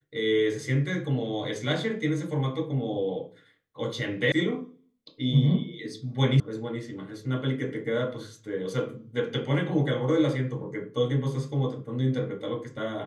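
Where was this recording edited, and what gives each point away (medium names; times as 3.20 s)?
4.32 s: sound stops dead
6.40 s: sound stops dead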